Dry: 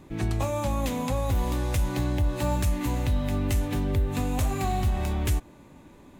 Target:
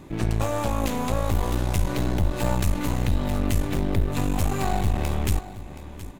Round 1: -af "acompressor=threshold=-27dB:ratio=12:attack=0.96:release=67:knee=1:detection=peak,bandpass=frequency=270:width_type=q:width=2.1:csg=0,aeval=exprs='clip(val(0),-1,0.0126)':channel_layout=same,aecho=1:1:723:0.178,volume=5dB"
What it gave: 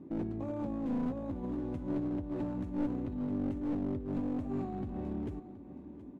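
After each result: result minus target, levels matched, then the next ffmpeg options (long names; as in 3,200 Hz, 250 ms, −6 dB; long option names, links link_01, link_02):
downward compressor: peak gain reduction +9.5 dB; 250 Hz band +6.0 dB
-af "bandpass=frequency=270:width_type=q:width=2.1:csg=0,aeval=exprs='clip(val(0),-1,0.0126)':channel_layout=same,aecho=1:1:723:0.178,volume=5dB"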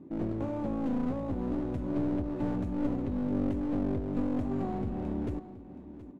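250 Hz band +5.5 dB
-af "aeval=exprs='clip(val(0),-1,0.0126)':channel_layout=same,aecho=1:1:723:0.178,volume=5dB"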